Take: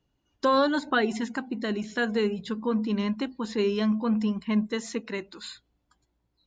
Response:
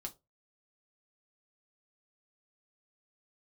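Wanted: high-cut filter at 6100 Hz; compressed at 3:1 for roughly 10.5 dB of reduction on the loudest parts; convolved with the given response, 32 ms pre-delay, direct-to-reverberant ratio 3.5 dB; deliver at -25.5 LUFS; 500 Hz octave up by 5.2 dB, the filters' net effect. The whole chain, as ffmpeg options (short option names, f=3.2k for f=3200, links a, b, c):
-filter_complex "[0:a]lowpass=6.1k,equalizer=f=500:t=o:g=6,acompressor=threshold=-29dB:ratio=3,asplit=2[a][b];[1:a]atrim=start_sample=2205,adelay=32[c];[b][c]afir=irnorm=-1:irlink=0,volume=-0.5dB[d];[a][d]amix=inputs=2:normalize=0,volume=4dB"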